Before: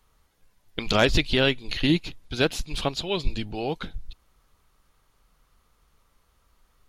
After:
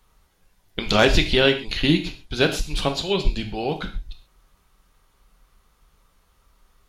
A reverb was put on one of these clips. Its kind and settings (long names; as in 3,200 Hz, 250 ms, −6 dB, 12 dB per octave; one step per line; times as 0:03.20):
reverb whose tail is shaped and stops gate 160 ms falling, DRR 5 dB
level +2.5 dB